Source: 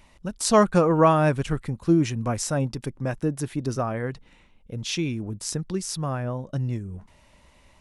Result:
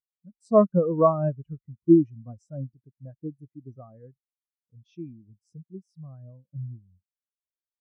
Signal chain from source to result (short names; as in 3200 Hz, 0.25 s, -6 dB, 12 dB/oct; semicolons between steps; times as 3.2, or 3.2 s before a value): HPF 41 Hz; spectral expander 2.5:1